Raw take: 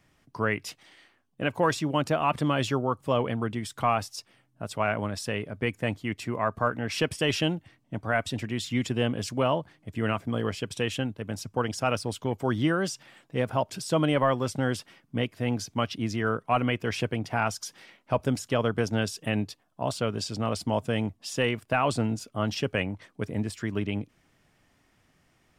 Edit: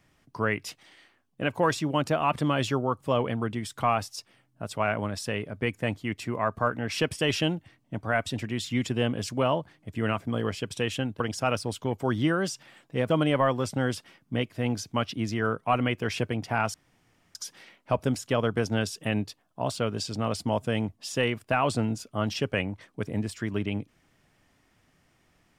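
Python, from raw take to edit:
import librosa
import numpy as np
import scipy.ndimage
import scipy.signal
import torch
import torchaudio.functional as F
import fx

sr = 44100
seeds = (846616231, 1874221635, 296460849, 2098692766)

y = fx.edit(x, sr, fx.cut(start_s=11.2, length_s=0.4),
    fx.cut(start_s=13.5, length_s=0.42),
    fx.insert_room_tone(at_s=17.56, length_s=0.61), tone=tone)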